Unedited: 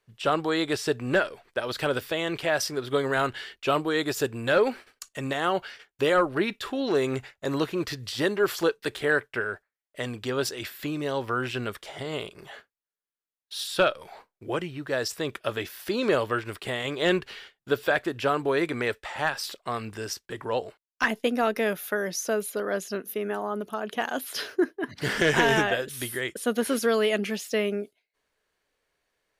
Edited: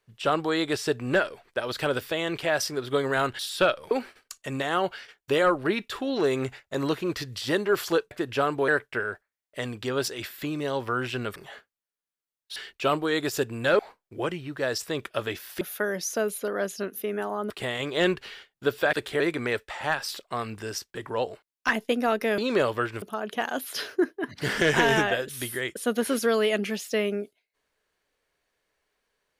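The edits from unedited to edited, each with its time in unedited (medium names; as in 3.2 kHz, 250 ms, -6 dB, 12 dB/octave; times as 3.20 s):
3.39–4.62 s: swap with 13.57–14.09 s
8.82–9.09 s: swap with 17.98–18.55 s
11.77–12.37 s: delete
15.91–16.55 s: swap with 21.73–23.62 s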